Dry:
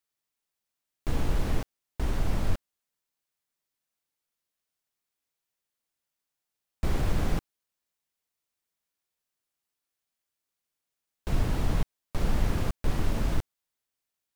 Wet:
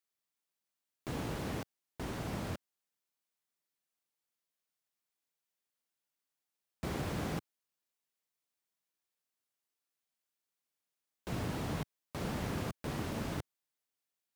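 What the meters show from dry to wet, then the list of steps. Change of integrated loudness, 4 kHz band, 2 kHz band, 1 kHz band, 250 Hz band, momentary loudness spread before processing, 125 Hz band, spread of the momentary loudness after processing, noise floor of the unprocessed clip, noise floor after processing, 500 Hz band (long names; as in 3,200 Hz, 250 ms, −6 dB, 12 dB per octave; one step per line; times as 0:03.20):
−7.5 dB, −4.0 dB, −4.0 dB, −4.0 dB, −4.5 dB, 7 LU, −9.0 dB, 8 LU, below −85 dBFS, below −85 dBFS, −4.0 dB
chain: high-pass filter 120 Hz 12 dB per octave
level −4 dB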